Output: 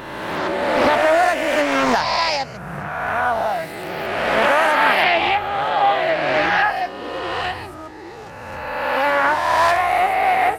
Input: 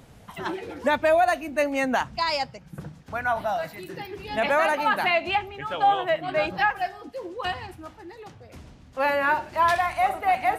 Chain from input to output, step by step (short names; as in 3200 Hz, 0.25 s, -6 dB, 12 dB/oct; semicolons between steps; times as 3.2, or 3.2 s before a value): spectral swells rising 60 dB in 1.98 s; Doppler distortion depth 0.44 ms; gain +2 dB